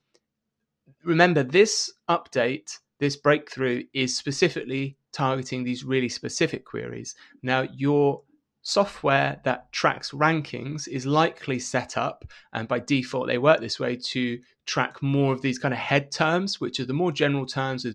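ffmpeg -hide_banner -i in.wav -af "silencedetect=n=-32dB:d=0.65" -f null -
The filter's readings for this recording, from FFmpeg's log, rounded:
silence_start: 0.00
silence_end: 1.06 | silence_duration: 1.06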